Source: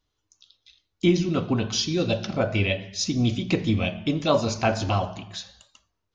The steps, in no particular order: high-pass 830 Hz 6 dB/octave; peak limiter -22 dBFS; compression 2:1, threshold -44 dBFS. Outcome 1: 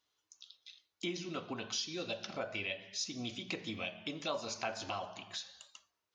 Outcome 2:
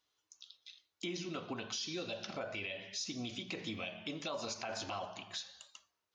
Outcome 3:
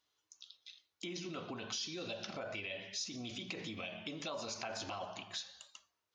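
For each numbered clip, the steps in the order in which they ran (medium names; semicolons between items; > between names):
high-pass > compression > peak limiter; high-pass > peak limiter > compression; peak limiter > high-pass > compression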